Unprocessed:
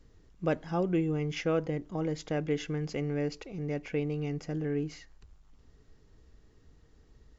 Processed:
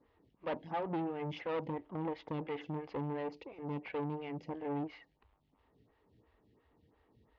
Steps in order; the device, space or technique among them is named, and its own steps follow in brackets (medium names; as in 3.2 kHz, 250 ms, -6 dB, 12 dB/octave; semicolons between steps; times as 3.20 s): vibe pedal into a guitar amplifier (lamp-driven phase shifter 2.9 Hz; valve stage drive 35 dB, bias 0.65; cabinet simulation 98–3500 Hz, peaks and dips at 160 Hz -5 dB, 390 Hz -3 dB, 920 Hz +6 dB, 1.5 kHz -5 dB); trim +3.5 dB